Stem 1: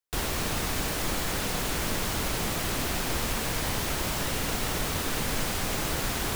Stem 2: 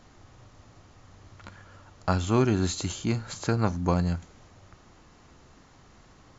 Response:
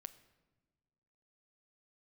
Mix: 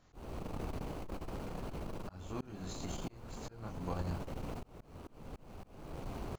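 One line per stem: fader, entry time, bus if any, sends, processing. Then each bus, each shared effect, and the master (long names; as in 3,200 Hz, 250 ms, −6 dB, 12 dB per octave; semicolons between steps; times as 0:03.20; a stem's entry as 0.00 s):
+1.0 dB, 0.00 s, no send, running median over 25 samples; automatic ducking −9 dB, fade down 0.95 s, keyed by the second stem
−10.0 dB, 0.00 s, send −8 dB, multi-voice chorus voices 2, 0.45 Hz, delay 24 ms, depth 4.3 ms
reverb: on, pre-delay 7 ms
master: volume swells 488 ms; saturating transformer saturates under 110 Hz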